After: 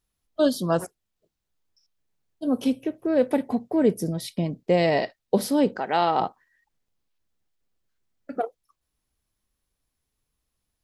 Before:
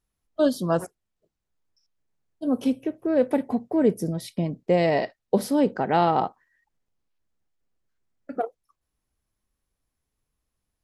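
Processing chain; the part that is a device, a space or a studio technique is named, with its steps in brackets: 5.78–6.19 HPF 780 Hz -> 310 Hz 6 dB/oct; presence and air boost (bell 3800 Hz +4 dB 1.3 oct; high shelf 9900 Hz +5.5 dB)

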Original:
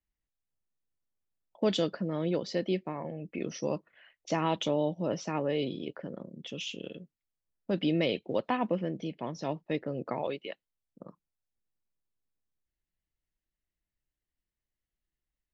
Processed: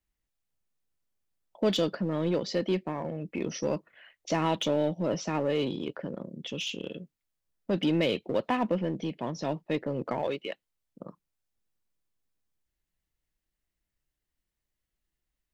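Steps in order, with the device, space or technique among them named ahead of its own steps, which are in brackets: parallel distortion (in parallel at -4 dB: hard clip -33 dBFS, distortion -5 dB)

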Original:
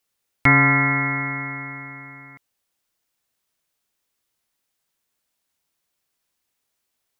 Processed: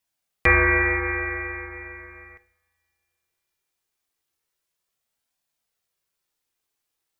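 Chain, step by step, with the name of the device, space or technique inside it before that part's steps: alien voice (ring modulator 220 Hz; flange 0.37 Hz, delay 1.1 ms, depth 1.6 ms, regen -52%); two-slope reverb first 0.67 s, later 3.3 s, from -27 dB, DRR 11 dB; gain +3 dB

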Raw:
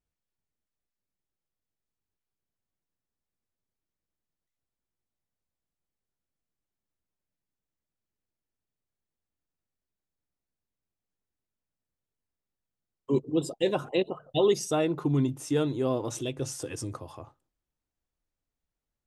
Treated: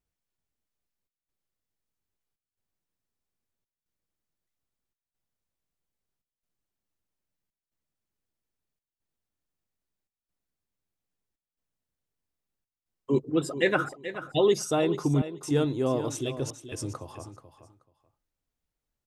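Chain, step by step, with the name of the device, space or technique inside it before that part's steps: 13.3–14.03 band shelf 1700 Hz +14.5 dB 1.1 oct; trance gate with a delay (step gate "xxxxx.xxxxx." 70 bpm -60 dB; feedback echo 0.431 s, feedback 17%, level -12 dB); gain +1 dB

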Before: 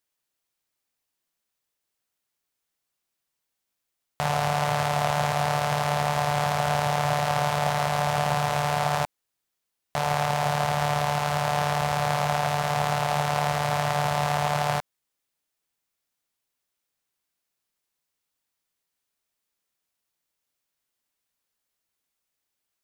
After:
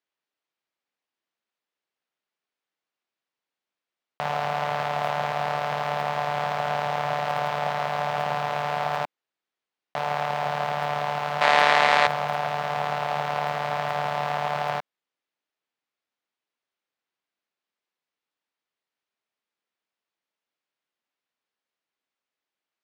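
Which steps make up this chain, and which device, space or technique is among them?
early digital voice recorder (BPF 220–3500 Hz; block floating point 7-bit); 11.41–12.07 graphic EQ 125/250/500/1000/2000/4000/8000 Hz -10/+11/+4/+5/+12/+10/+10 dB; gain -1 dB

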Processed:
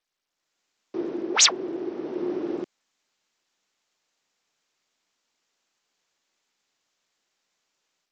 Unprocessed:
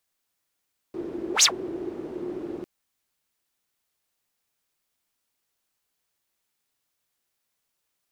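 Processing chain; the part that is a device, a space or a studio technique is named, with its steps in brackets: Bluetooth headset (HPF 200 Hz 12 dB/oct; AGC gain up to 7 dB; downsampling 16000 Hz; gain -1.5 dB; SBC 64 kbps 32000 Hz)

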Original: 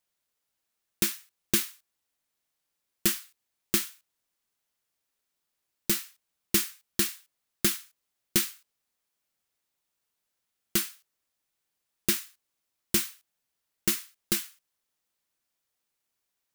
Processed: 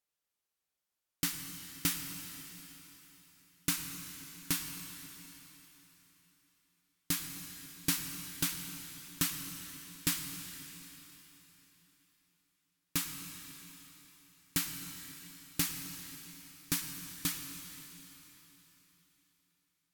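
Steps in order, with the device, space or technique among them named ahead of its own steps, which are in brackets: slowed and reverbed (varispeed -17%; reverb RT60 4.0 s, pre-delay 94 ms, DRR 6 dB); gain -7.5 dB

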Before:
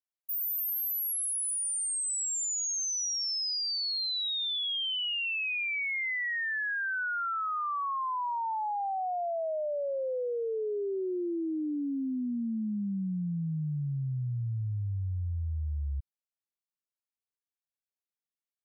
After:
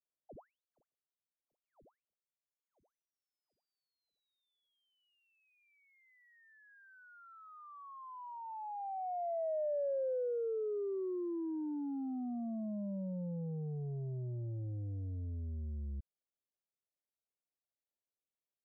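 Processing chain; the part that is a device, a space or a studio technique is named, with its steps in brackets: overdriven synthesiser ladder filter (soft clip -35.5 dBFS, distortion -15 dB; ladder low-pass 750 Hz, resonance 40%); gain +5.5 dB

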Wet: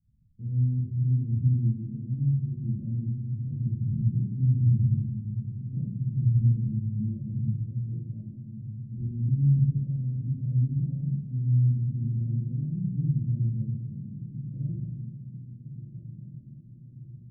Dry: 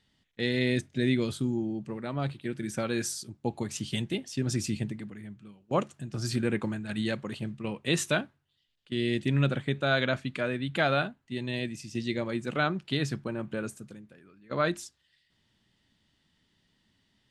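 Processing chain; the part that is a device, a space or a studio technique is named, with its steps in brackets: 7.55–8.98 HPF 460 Hz 12 dB/oct; bell 3200 Hz -11.5 dB; club heard from the street (limiter -23 dBFS, peak gain reduction 9.5 dB; LPF 150 Hz 24 dB/oct; reverb RT60 0.95 s, pre-delay 20 ms, DRR -7.5 dB); diffused feedback echo 1.358 s, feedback 51%, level -10 dB; gain +3 dB

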